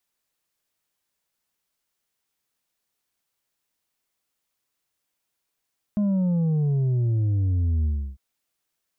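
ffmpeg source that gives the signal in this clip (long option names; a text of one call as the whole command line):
ffmpeg -f lavfi -i "aevalsrc='0.1*clip((2.2-t)/0.32,0,1)*tanh(1.68*sin(2*PI*210*2.2/log(65/210)*(exp(log(65/210)*t/2.2)-1)))/tanh(1.68)':duration=2.2:sample_rate=44100" out.wav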